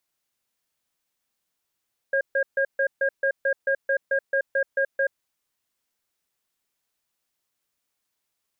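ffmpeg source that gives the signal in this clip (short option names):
-f lavfi -i "aevalsrc='0.0794*(sin(2*PI*547*t)+sin(2*PI*1620*t))*clip(min(mod(t,0.22),0.08-mod(t,0.22))/0.005,0,1)':d=3.02:s=44100"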